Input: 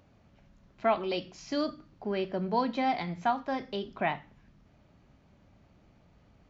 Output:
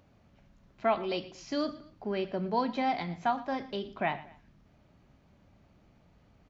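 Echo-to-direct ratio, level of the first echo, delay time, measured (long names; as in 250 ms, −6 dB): −17.5 dB, −18.0 dB, 117 ms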